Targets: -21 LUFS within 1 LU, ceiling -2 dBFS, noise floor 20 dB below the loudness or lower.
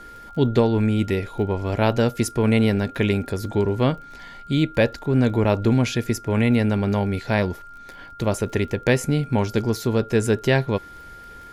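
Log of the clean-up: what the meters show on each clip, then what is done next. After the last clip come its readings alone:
tick rate 29 per s; steady tone 1.4 kHz; tone level -40 dBFS; loudness -22.0 LUFS; peak level -4.5 dBFS; loudness target -21.0 LUFS
-> de-click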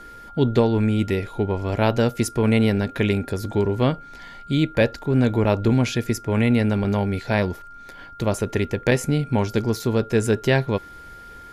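tick rate 0.087 per s; steady tone 1.4 kHz; tone level -40 dBFS
-> band-stop 1.4 kHz, Q 30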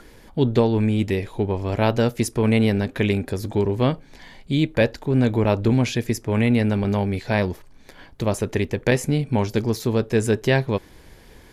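steady tone not found; loudness -22.0 LUFS; peak level -4.5 dBFS; loudness target -21.0 LUFS
-> trim +1 dB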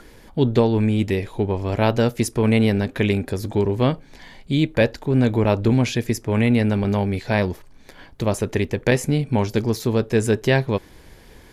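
loudness -21.0 LUFS; peak level -3.5 dBFS; noise floor -47 dBFS

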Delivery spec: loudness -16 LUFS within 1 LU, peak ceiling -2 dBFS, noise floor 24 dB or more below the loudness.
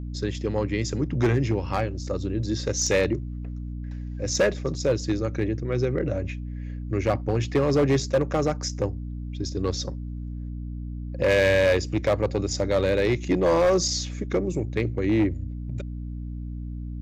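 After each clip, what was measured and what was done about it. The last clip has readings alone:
clipped samples 1.7%; clipping level -15.5 dBFS; hum 60 Hz; highest harmonic 300 Hz; hum level -31 dBFS; loudness -26.0 LUFS; peak level -15.5 dBFS; loudness target -16.0 LUFS
-> clip repair -15.5 dBFS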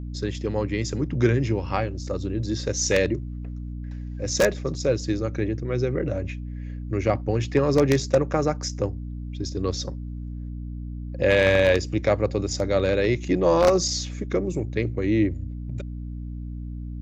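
clipped samples 0.0%; hum 60 Hz; highest harmonic 300 Hz; hum level -30 dBFS
-> de-hum 60 Hz, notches 5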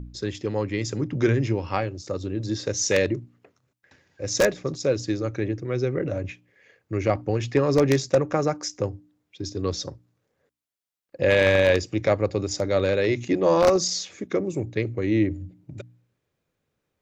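hum not found; loudness -24.5 LUFS; peak level -6.0 dBFS; loudness target -16.0 LUFS
-> trim +8.5 dB; peak limiter -2 dBFS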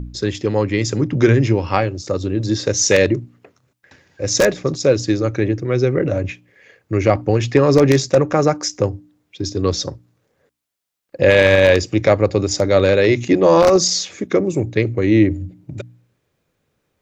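loudness -16.5 LUFS; peak level -2.0 dBFS; noise floor -71 dBFS

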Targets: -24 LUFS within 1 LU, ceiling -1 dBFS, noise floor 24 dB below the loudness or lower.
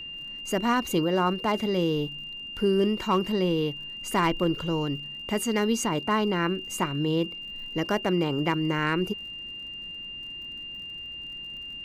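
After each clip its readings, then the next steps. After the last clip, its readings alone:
tick rate 49 per s; steady tone 2.8 kHz; tone level -36 dBFS; loudness -27.5 LUFS; peak level -14.0 dBFS; loudness target -24.0 LUFS
-> de-click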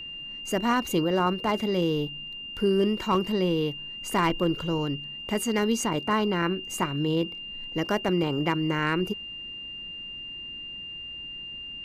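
tick rate 0.17 per s; steady tone 2.8 kHz; tone level -36 dBFS
-> band-stop 2.8 kHz, Q 30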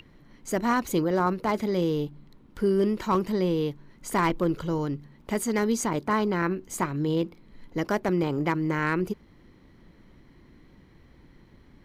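steady tone not found; loudness -27.0 LUFS; peak level -13.5 dBFS; loudness target -24.0 LUFS
-> trim +3 dB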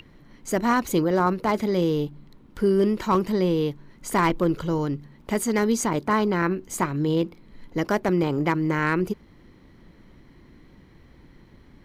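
loudness -24.0 LUFS; peak level -10.5 dBFS; noise floor -53 dBFS

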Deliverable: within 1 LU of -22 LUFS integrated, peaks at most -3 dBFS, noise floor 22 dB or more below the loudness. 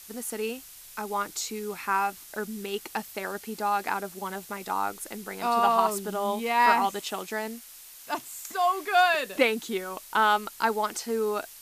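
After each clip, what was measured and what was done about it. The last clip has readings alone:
noise floor -48 dBFS; noise floor target -50 dBFS; loudness -28.0 LUFS; peak level -7.5 dBFS; loudness target -22.0 LUFS
-> noise print and reduce 6 dB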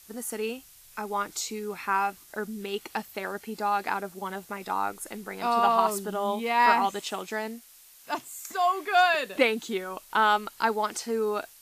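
noise floor -53 dBFS; loudness -28.0 LUFS; peak level -7.5 dBFS; loudness target -22.0 LUFS
-> trim +6 dB; peak limiter -3 dBFS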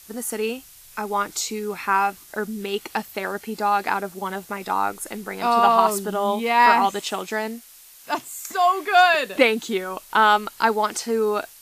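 loudness -22.0 LUFS; peak level -3.0 dBFS; noise floor -47 dBFS

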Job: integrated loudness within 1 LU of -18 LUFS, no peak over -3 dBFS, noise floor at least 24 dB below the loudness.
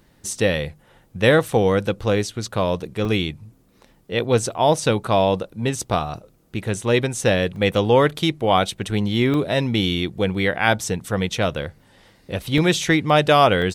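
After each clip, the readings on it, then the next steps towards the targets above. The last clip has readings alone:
dropouts 5; longest dropout 1.8 ms; loudness -20.5 LUFS; peak level -1.5 dBFS; loudness target -18.0 LUFS
-> interpolate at 3.05/7.56/9.34/12.58/13.62 s, 1.8 ms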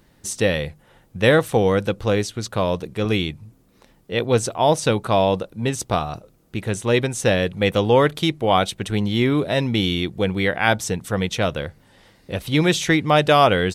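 dropouts 0; loudness -20.5 LUFS; peak level -1.5 dBFS; loudness target -18.0 LUFS
-> trim +2.5 dB; peak limiter -3 dBFS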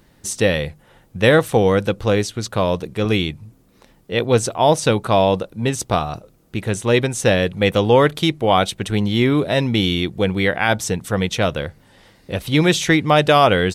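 loudness -18.0 LUFS; peak level -3.0 dBFS; noise floor -54 dBFS

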